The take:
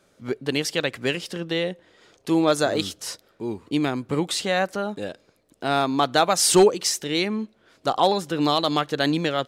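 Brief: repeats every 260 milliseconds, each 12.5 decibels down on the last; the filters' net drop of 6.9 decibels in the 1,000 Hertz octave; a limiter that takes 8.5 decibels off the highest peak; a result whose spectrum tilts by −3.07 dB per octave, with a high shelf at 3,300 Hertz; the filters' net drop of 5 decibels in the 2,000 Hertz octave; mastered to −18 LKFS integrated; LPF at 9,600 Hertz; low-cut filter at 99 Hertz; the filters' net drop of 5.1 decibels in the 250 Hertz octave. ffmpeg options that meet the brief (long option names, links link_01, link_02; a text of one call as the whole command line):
ffmpeg -i in.wav -af "highpass=99,lowpass=9600,equalizer=frequency=250:width_type=o:gain=-6.5,equalizer=frequency=1000:width_type=o:gain=-9,equalizer=frequency=2000:width_type=o:gain=-5,highshelf=frequency=3300:gain=4,alimiter=limit=-15.5dB:level=0:latency=1,aecho=1:1:260|520|780:0.237|0.0569|0.0137,volume=10dB" out.wav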